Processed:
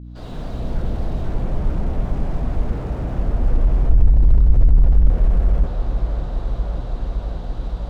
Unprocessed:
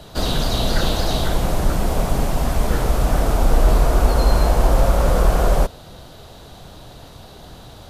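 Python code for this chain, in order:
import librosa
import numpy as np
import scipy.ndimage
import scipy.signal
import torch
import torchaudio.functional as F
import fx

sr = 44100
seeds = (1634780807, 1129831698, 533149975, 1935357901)

p1 = fx.fade_in_head(x, sr, length_s=0.95)
p2 = fx.highpass(p1, sr, hz=70.0, slope=12, at=(2.72, 3.17))
p3 = fx.low_shelf(p2, sr, hz=280.0, db=11.5, at=(3.89, 5.1))
p4 = fx.add_hum(p3, sr, base_hz=60, snr_db=24)
p5 = fx.air_absorb(p4, sr, metres=110.0)
p6 = p5 + fx.echo_wet_lowpass(p5, sr, ms=569, feedback_pct=82, hz=1900.0, wet_db=-18, dry=0)
p7 = fx.slew_limit(p6, sr, full_power_hz=17.0)
y = p7 * 10.0 ** (-1.0 / 20.0)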